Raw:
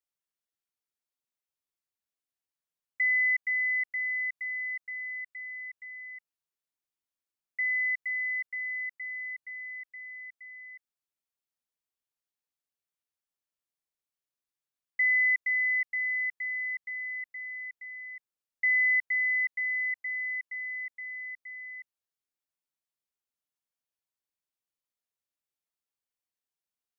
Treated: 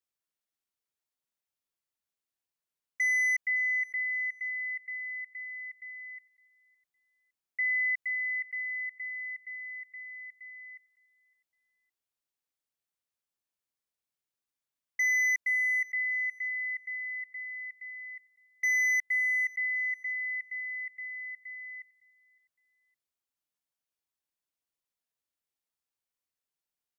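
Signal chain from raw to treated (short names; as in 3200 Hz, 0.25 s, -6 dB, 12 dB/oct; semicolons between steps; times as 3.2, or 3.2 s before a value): overloaded stage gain 24.5 dB; on a send: feedback echo 0.561 s, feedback 27%, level -22 dB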